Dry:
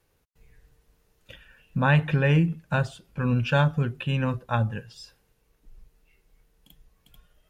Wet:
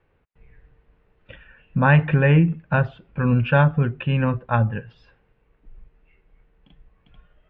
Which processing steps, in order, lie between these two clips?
LPF 2600 Hz 24 dB/oct; gain +5 dB

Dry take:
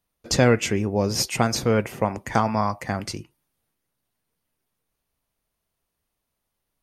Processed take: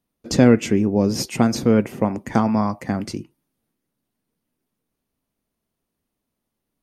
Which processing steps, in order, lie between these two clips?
bell 250 Hz +12 dB 1.6 oct; gain -3 dB

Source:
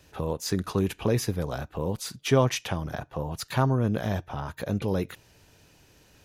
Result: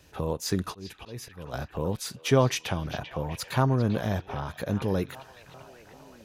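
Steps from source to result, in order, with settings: 0.61–1.54 auto swell 0.506 s; delay with a stepping band-pass 0.393 s, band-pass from 3300 Hz, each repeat -0.7 oct, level -9 dB

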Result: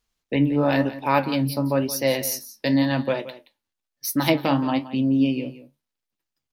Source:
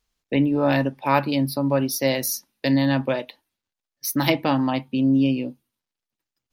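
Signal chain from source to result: flange 1 Hz, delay 8.1 ms, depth 6.9 ms, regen +61%; on a send: echo 0.173 s -15 dB; on the sum: gain +3.5 dB

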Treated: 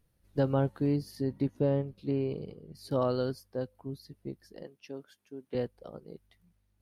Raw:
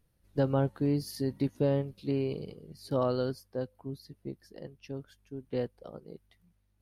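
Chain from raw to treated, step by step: 0.96–2.75 high shelf 2600 Hz -9 dB; 4.63–5.55 HPF 260 Hz 12 dB/oct

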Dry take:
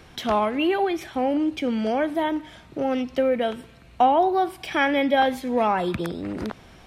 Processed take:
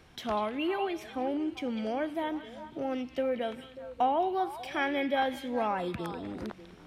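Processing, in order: delay with a stepping band-pass 0.196 s, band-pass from 3000 Hz, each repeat -1.4 oct, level -6.5 dB; gain -9 dB

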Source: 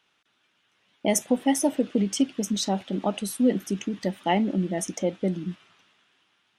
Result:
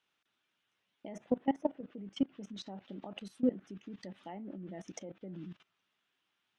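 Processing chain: treble ducked by the level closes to 1600 Hz, closed at -21 dBFS; level quantiser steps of 19 dB; gain -6 dB

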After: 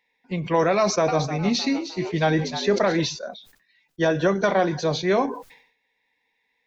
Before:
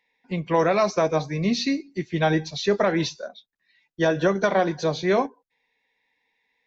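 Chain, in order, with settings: 0.77–3 frequency-shifting echo 0.307 s, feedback 38%, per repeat +95 Hz, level -11.5 dB; sustainer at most 95 dB/s

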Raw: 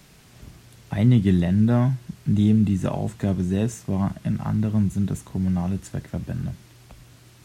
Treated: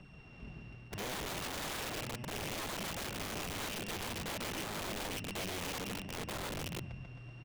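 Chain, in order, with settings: sample sorter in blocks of 16 samples; LPF 3400 Hz 12 dB/oct; reverse; compressor 4:1, threshold -31 dBFS, peak gain reduction 15.5 dB; reverse; flange 0.63 Hz, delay 0 ms, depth 8.3 ms, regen -6%; on a send: bouncing-ball echo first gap 0.14 s, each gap 0.9×, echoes 5; on the sum: wrapped overs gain 34 dB; gain -1 dB

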